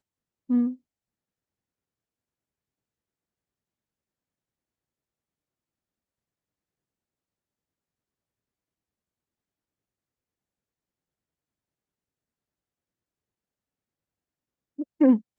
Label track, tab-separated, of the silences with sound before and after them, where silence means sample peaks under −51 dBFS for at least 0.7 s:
0.760000	14.780000	silence